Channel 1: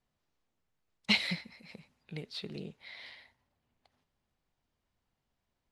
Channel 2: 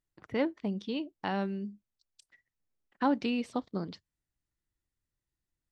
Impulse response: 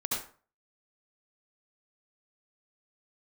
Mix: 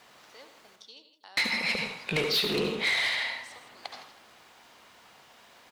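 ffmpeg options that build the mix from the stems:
-filter_complex "[0:a]asplit=2[link_01][link_02];[link_02]highpass=frequency=720:poles=1,volume=37dB,asoftclip=type=tanh:threshold=-12.5dB[link_03];[link_01][link_03]amix=inputs=2:normalize=0,lowpass=frequency=4800:poles=1,volume=-6dB,volume=-1dB,asplit=3[link_04][link_05][link_06];[link_04]atrim=end=0.76,asetpts=PTS-STARTPTS,afade=type=out:start_time=0.756:duration=0.004:curve=hsin[link_07];[link_05]atrim=start=0.76:end=1.37,asetpts=PTS-STARTPTS,volume=0[link_08];[link_06]atrim=start=1.37,asetpts=PTS-STARTPTS,afade=type=in:duration=0.004:curve=hsin[link_09];[link_07][link_08][link_09]concat=n=3:v=0:a=1,asplit=3[link_10][link_11][link_12];[link_11]volume=-6dB[link_13];[link_12]volume=-14dB[link_14];[1:a]highpass=650,acompressor=threshold=-51dB:ratio=1.5,aexciter=amount=4.8:drive=6.6:freq=3600,volume=-10.5dB,asplit=3[link_15][link_16][link_17];[link_16]volume=-13dB[link_18];[link_17]volume=-12dB[link_19];[2:a]atrim=start_sample=2205[link_20];[link_13][link_18]amix=inputs=2:normalize=0[link_21];[link_21][link_20]afir=irnorm=-1:irlink=0[link_22];[link_14][link_19]amix=inputs=2:normalize=0,aecho=0:1:161|322|483|644|805:1|0.35|0.122|0.0429|0.015[link_23];[link_10][link_15][link_22][link_23]amix=inputs=4:normalize=0,lowshelf=frequency=270:gain=-7,alimiter=limit=-19.5dB:level=0:latency=1:release=405"

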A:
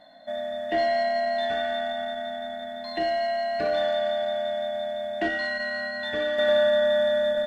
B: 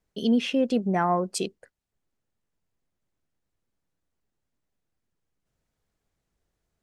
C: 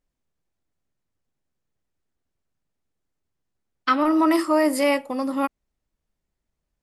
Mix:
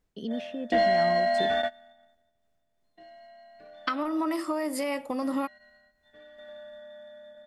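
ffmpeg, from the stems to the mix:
ffmpeg -i stem1.wav -i stem2.wav -i stem3.wav -filter_complex "[0:a]agate=range=-22dB:threshold=-29dB:ratio=16:detection=peak,volume=1dB[link_01];[1:a]acrossover=split=330|1800[link_02][link_03][link_04];[link_02]acompressor=threshold=-32dB:ratio=4[link_05];[link_03]acompressor=threshold=-39dB:ratio=4[link_06];[link_04]acompressor=threshold=-43dB:ratio=4[link_07];[link_05][link_06][link_07]amix=inputs=3:normalize=0,highshelf=frequency=5600:gain=-10,volume=-1dB,asplit=2[link_08][link_09];[2:a]acompressor=threshold=-21dB:ratio=6,volume=2dB[link_10];[link_09]apad=whole_len=329224[link_11];[link_01][link_11]sidechaingate=range=-26dB:threshold=-53dB:ratio=16:detection=peak[link_12];[link_08][link_10]amix=inputs=2:normalize=0,tremolo=f=2.8:d=0.4,acompressor=threshold=-26dB:ratio=6,volume=0dB[link_13];[link_12][link_13]amix=inputs=2:normalize=0" out.wav

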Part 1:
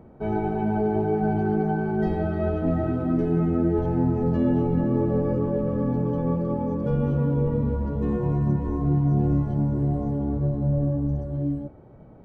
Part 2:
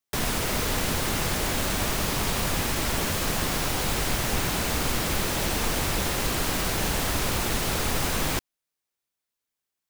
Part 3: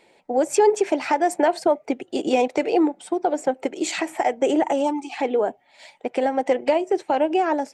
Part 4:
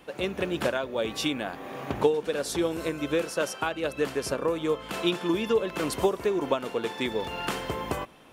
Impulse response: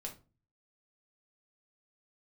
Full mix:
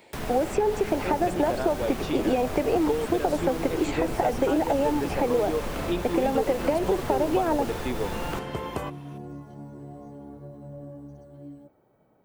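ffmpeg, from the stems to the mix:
-filter_complex "[0:a]aemphasis=mode=production:type=riaa,volume=-9.5dB[link_01];[1:a]volume=-5dB[link_02];[2:a]acompressor=threshold=-19dB:ratio=6,volume=2.5dB[link_03];[3:a]adelay=850,volume=-0.5dB[link_04];[link_01][link_02][link_03][link_04]amix=inputs=4:normalize=0,acrossover=split=1100|2900[link_05][link_06][link_07];[link_05]acompressor=threshold=-20dB:ratio=4[link_08];[link_06]acompressor=threshold=-41dB:ratio=4[link_09];[link_07]acompressor=threshold=-46dB:ratio=4[link_10];[link_08][link_09][link_10]amix=inputs=3:normalize=0"

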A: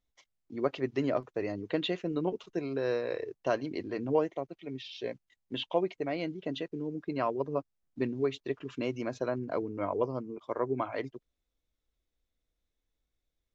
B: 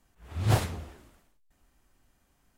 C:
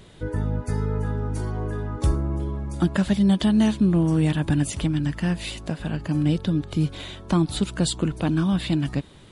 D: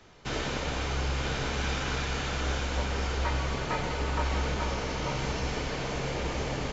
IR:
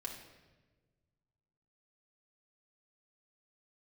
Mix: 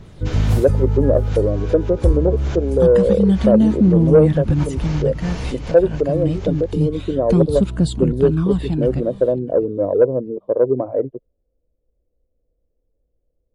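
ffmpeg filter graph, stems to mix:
-filter_complex "[0:a]lowpass=frequency=520:width_type=q:width=4.9,volume=0dB,asplit=2[link_01][link_02];[1:a]highshelf=frequency=6200:gain=7.5,volume=-11.5dB,asplit=2[link_03][link_04];[link_04]volume=-21dB[link_05];[2:a]aphaser=in_gain=1:out_gain=1:delay=2.2:decay=0.45:speed=0.26:type=triangular,adynamicequalizer=threshold=0.00794:dfrequency=1800:dqfactor=0.7:tfrequency=1800:tqfactor=0.7:attack=5:release=100:ratio=0.375:range=3.5:mode=cutabove:tftype=highshelf,volume=-8.5dB,asplit=2[link_06][link_07];[link_07]volume=-20.5dB[link_08];[3:a]volume=-5.5dB[link_09];[link_02]apad=whole_len=296644[link_10];[link_09][link_10]sidechaincompress=threshold=-45dB:ratio=8:attack=21:release=101[link_11];[link_05][link_08]amix=inputs=2:normalize=0,aecho=0:1:649|1298|1947:1|0.2|0.04[link_12];[link_01][link_03][link_06][link_11][link_12]amix=inputs=5:normalize=0,lowshelf=frequency=200:gain=9,acontrast=40"

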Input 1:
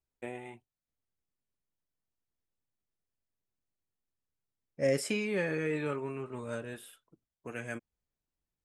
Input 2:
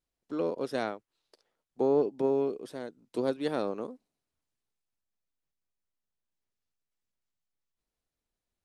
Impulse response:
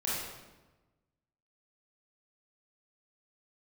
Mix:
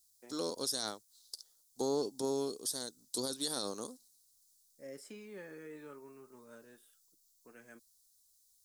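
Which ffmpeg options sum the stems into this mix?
-filter_complex "[0:a]highpass=frequency=160:width=0.5412,highpass=frequency=160:width=1.3066,volume=-14dB[link_01];[1:a]equalizer=frequency=380:width=1.1:gain=-4.5,aexciter=amount=12.6:drive=7.3:freq=3800,volume=-2dB,asplit=2[link_02][link_03];[link_03]apad=whole_len=381434[link_04];[link_01][link_04]sidechaincompress=threshold=-46dB:ratio=8:attack=40:release=1120[link_05];[link_05][link_02]amix=inputs=2:normalize=0,equalizer=frequency=160:width_type=o:width=0.67:gain=-5,equalizer=frequency=630:width_type=o:width=0.67:gain=-4,equalizer=frequency=2500:width_type=o:width=0.67:gain=-8,alimiter=limit=-24dB:level=0:latency=1:release=48"

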